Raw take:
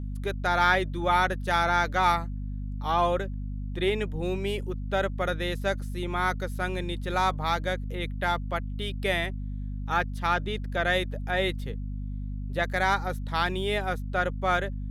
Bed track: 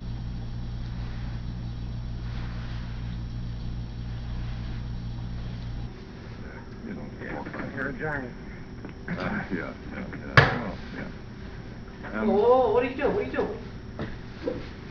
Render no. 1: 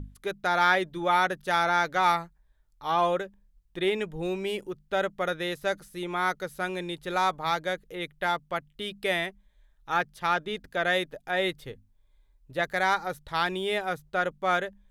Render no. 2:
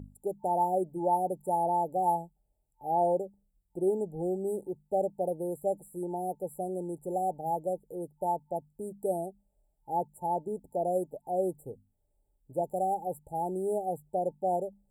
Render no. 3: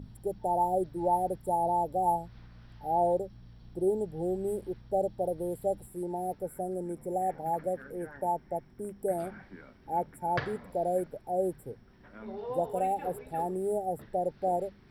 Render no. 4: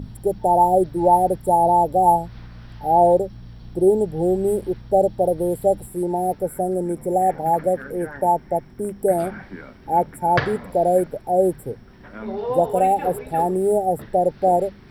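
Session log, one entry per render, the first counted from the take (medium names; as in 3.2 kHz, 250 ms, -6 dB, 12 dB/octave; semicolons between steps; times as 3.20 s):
hum notches 50/100/150/200/250 Hz
FFT band-reject 890–7200 Hz; high-pass 130 Hz 6 dB/octave
add bed track -18 dB
trim +12 dB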